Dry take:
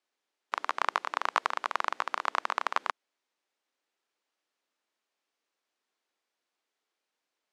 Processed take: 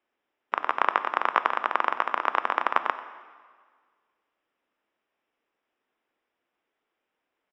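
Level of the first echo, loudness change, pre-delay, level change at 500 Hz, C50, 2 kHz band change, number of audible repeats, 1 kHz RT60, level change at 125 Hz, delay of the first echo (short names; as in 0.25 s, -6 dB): -17.5 dB, +5.5 dB, 4 ms, +7.0 dB, 12.0 dB, +5.0 dB, 1, 1.7 s, n/a, 92 ms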